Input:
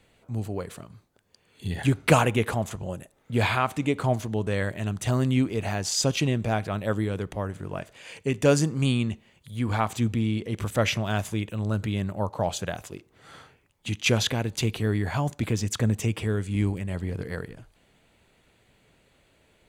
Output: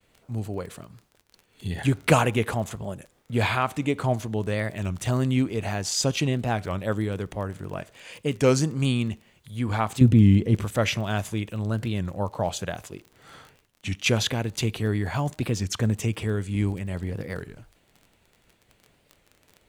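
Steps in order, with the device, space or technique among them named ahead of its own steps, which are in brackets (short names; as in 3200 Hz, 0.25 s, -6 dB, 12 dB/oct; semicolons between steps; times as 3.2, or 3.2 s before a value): warped LP (record warp 33 1/3 rpm, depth 160 cents; crackle 25/s -35 dBFS; pink noise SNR 42 dB); expander -58 dBFS; 10.01–10.61 low shelf 430 Hz +11.5 dB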